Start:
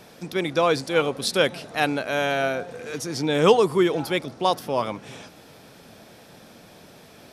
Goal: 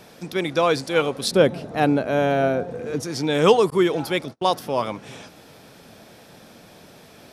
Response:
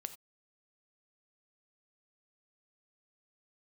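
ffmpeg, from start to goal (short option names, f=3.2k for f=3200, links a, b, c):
-filter_complex "[0:a]asettb=1/sr,asplit=3[a][b][c];[a]atrim=end=1.314[d];[b]atrim=start=1.31:end=3.03,asetpts=PTS-STARTPTS,afade=t=in:d=0.004:c=qsin,afade=t=out:st=1.716:d=0.004:c=qsin,tiltshelf=f=970:g=8[e];[c]atrim=start=3.026[f];[d][e]acrossfade=d=0.004:c1=hsin:c2=qsin[g];[g][f]acrossfade=d=0.004:c1=qsin:c2=hsin,asettb=1/sr,asplit=3[h][i][j];[h]atrim=end=3.704[k];[i]atrim=start=3.7:end=4.51,asetpts=PTS-STARTPTS,afade=t=in:d=0.004:c=qsin,afade=t=out:st=0.806:d=0.004:c=qsin,agate=range=-35dB:threshold=-33dB:ratio=16:detection=peak[l];[j]atrim=start=4.506[m];[k][l]acrossfade=d=0.004:c1=hsin:c2=qsin[n];[n][m]acrossfade=d=0.004:c1=qsin:c2=hsin,volume=1dB"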